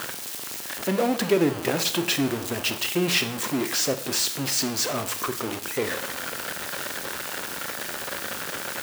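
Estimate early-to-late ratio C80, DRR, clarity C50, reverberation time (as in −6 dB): 15.5 dB, 9.0 dB, 12.5 dB, 0.60 s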